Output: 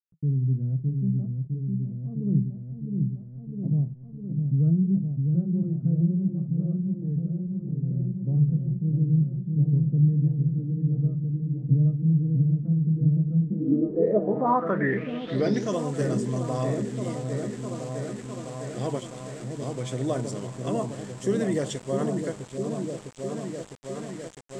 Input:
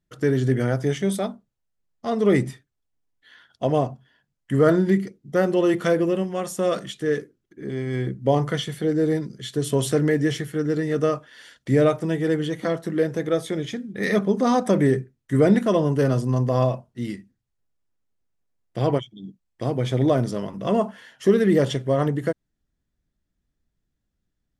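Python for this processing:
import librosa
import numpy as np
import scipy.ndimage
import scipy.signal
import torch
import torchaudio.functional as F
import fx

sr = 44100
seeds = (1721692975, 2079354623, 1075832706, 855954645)

y = fx.echo_opening(x, sr, ms=656, hz=400, octaves=1, feedback_pct=70, wet_db=-3)
y = np.where(np.abs(y) >= 10.0 ** (-34.0 / 20.0), y, 0.0)
y = fx.filter_sweep_lowpass(y, sr, from_hz=160.0, to_hz=7800.0, start_s=13.37, end_s=15.78, q=5.9)
y = F.gain(torch.from_numpy(y), -8.5).numpy()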